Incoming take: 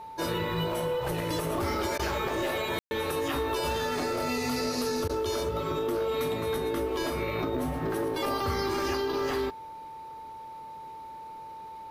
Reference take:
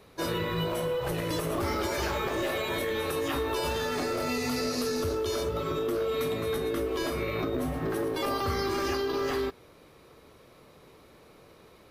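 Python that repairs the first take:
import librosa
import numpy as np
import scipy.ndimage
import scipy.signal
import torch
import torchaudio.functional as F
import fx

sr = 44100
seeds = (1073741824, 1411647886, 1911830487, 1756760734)

y = fx.notch(x, sr, hz=890.0, q=30.0)
y = fx.fix_ambience(y, sr, seeds[0], print_start_s=10.2, print_end_s=10.7, start_s=2.79, end_s=2.91)
y = fx.fix_interpolate(y, sr, at_s=(1.98, 5.08), length_ms=12.0)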